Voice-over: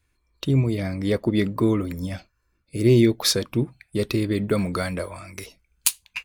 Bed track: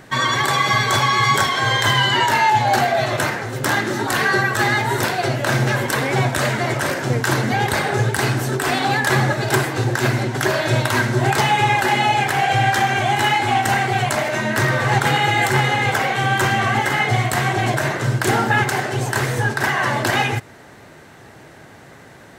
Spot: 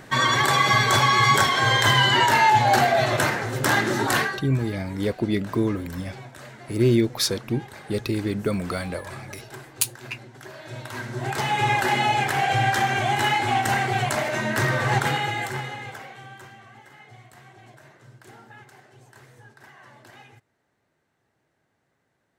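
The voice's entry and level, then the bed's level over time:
3.95 s, -2.5 dB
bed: 4.18 s -1.5 dB
4.45 s -23 dB
10.49 s -23 dB
11.69 s -4.5 dB
14.98 s -4.5 dB
16.65 s -30 dB

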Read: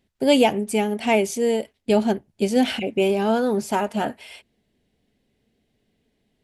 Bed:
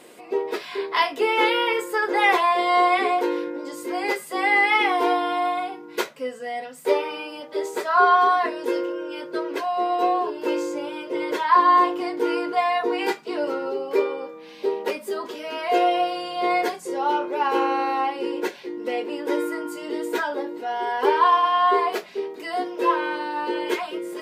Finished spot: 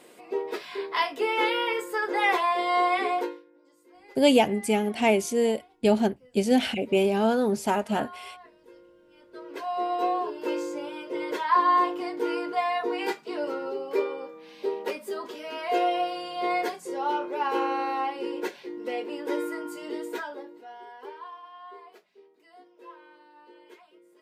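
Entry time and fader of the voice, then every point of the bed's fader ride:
3.95 s, -2.5 dB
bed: 3.23 s -5 dB
3.44 s -27.5 dB
9.04 s -27.5 dB
9.71 s -5 dB
19.92 s -5 dB
21.35 s -26.5 dB

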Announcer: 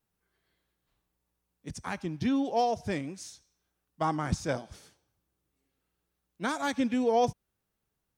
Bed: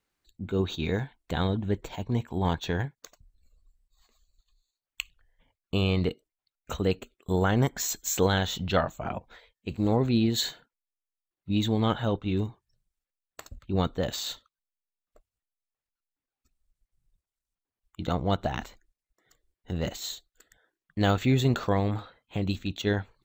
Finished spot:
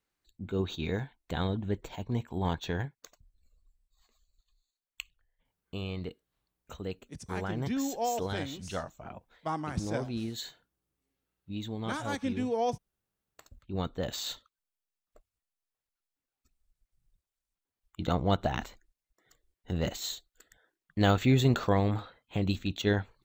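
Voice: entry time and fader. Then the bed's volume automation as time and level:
5.45 s, -4.5 dB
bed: 4.73 s -4 dB
5.46 s -11.5 dB
13.36 s -11.5 dB
14.45 s -0.5 dB

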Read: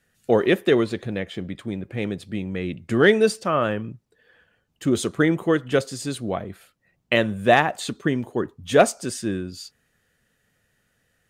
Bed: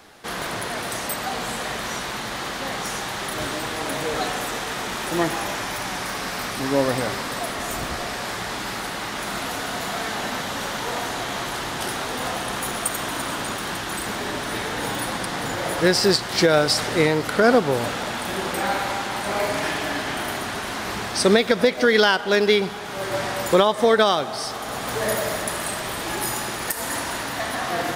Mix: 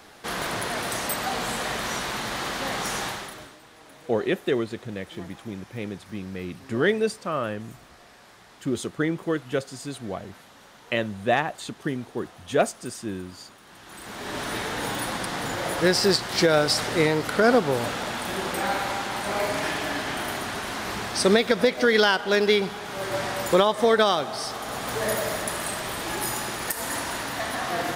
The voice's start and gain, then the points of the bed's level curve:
3.80 s, -6.0 dB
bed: 3.07 s -0.5 dB
3.58 s -22.5 dB
13.65 s -22.5 dB
14.4 s -2.5 dB

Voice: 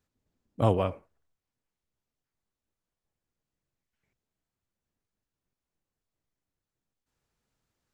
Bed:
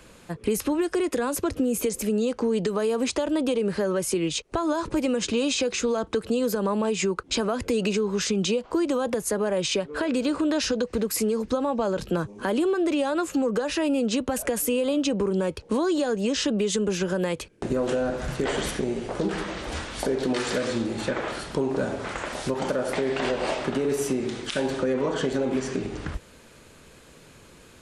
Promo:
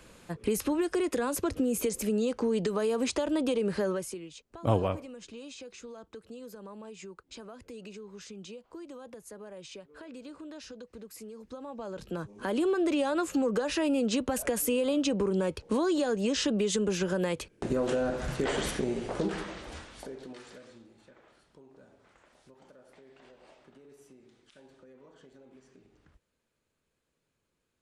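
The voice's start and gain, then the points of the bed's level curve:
4.05 s, -2.0 dB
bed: 3.89 s -4 dB
4.29 s -20.5 dB
11.34 s -20.5 dB
12.68 s -3.5 dB
19.2 s -3.5 dB
21.02 s -30.5 dB

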